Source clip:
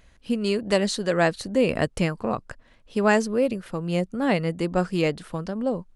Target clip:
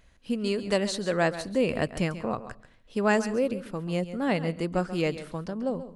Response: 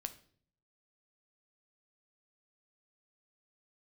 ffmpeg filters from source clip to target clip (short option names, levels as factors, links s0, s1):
-filter_complex "[0:a]asplit=2[s0][s1];[1:a]atrim=start_sample=2205,adelay=136[s2];[s1][s2]afir=irnorm=-1:irlink=0,volume=0.299[s3];[s0][s3]amix=inputs=2:normalize=0,volume=0.631"